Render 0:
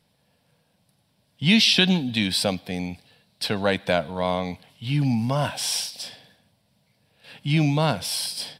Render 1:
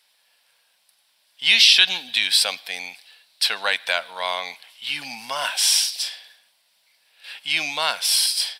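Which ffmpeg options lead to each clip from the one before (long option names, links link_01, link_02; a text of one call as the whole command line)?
ffmpeg -i in.wav -filter_complex "[0:a]highpass=1400,asplit=2[link_01][link_02];[link_02]alimiter=limit=-16dB:level=0:latency=1:release=236,volume=0.5dB[link_03];[link_01][link_03]amix=inputs=2:normalize=0,volume=2.5dB" out.wav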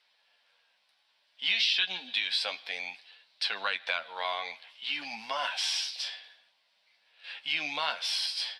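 ffmpeg -i in.wav -filter_complex "[0:a]acrossover=split=160 5100:gain=0.158 1 0.0631[link_01][link_02][link_03];[link_01][link_02][link_03]amix=inputs=3:normalize=0,acompressor=threshold=-26dB:ratio=2,flanger=delay=9.6:depth=4.4:regen=32:speed=0.58:shape=triangular" out.wav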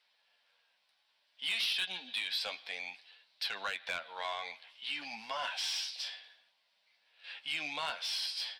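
ffmpeg -i in.wav -af "asoftclip=type=tanh:threshold=-22.5dB,volume=-4dB" out.wav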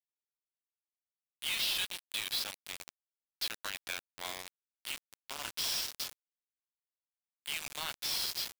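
ffmpeg -i in.wav -af "crystalizer=i=2:c=0,aecho=1:1:329|658|987|1316|1645:0.224|0.107|0.0516|0.0248|0.0119,acrusher=bits=4:mix=0:aa=0.000001,volume=-5dB" out.wav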